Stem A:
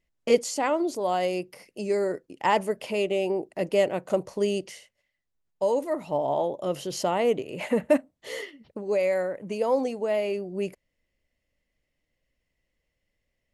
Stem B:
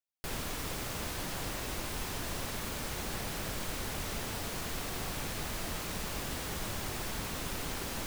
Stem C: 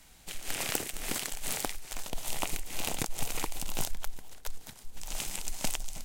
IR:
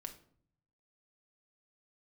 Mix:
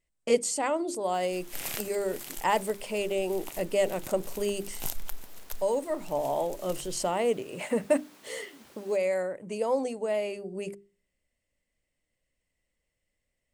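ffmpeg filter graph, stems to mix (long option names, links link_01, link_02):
-filter_complex "[0:a]equalizer=frequency=8300:width_type=o:width=0.29:gain=14,bandreject=frequency=50:width_type=h:width=6,bandreject=frequency=100:width_type=h:width=6,bandreject=frequency=150:width_type=h:width=6,bandreject=frequency=200:width_type=h:width=6,bandreject=frequency=250:width_type=h:width=6,bandreject=frequency=300:width_type=h:width=6,bandreject=frequency=350:width_type=h:width=6,bandreject=frequency=400:width_type=h:width=6,volume=-3.5dB,asplit=3[link_01][link_02][link_03];[link_02]volume=-21.5dB[link_04];[1:a]highpass=frequency=200:width=0.5412,highpass=frequency=200:width=1.3066,adelay=900,volume=-17dB[link_05];[2:a]equalizer=frequency=13000:width=1.8:gain=10.5,adelay=1050,volume=-3.5dB,asplit=2[link_06][link_07];[link_07]volume=-16dB[link_08];[link_03]apad=whole_len=312951[link_09];[link_06][link_09]sidechaincompress=threshold=-43dB:ratio=8:attack=23:release=245[link_10];[3:a]atrim=start_sample=2205[link_11];[link_04][link_08]amix=inputs=2:normalize=0[link_12];[link_12][link_11]afir=irnorm=-1:irlink=0[link_13];[link_01][link_05][link_10][link_13]amix=inputs=4:normalize=0"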